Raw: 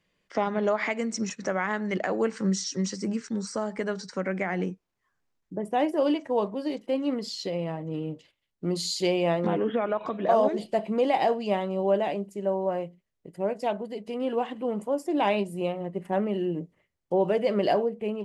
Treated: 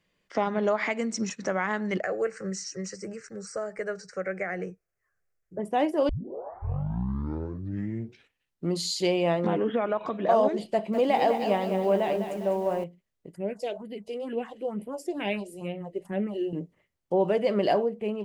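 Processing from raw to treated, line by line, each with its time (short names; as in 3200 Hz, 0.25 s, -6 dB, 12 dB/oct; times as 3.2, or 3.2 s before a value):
2–5.59 fixed phaser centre 940 Hz, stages 6
6.09 tape start 2.62 s
10.71–12.84 lo-fi delay 0.202 s, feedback 55%, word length 8-bit, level -8 dB
13.35–16.53 phaser stages 4, 2.2 Hz, lowest notch 160–1200 Hz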